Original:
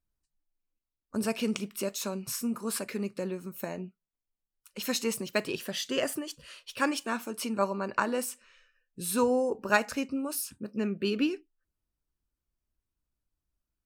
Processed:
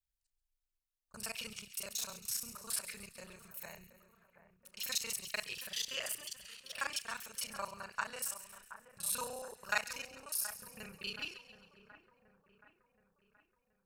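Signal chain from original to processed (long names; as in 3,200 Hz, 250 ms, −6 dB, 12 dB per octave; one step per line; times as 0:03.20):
reversed piece by piece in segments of 30 ms
guitar amp tone stack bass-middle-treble 10-0-10
echo with a time of its own for lows and highs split 1,900 Hz, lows 725 ms, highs 135 ms, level −13 dB
level −1 dB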